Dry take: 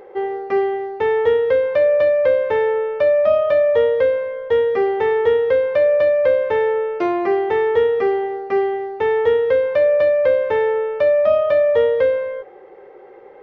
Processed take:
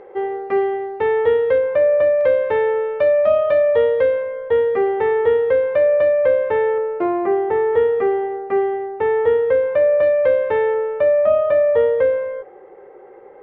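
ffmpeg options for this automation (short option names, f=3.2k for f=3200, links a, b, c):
-af "asetnsamples=n=441:p=0,asendcmd='1.58 lowpass f 2000;2.21 lowpass f 3400;4.22 lowpass f 2400;6.78 lowpass f 1500;7.73 lowpass f 2000;10.03 lowpass f 2900;10.74 lowpass f 2000',lowpass=3k"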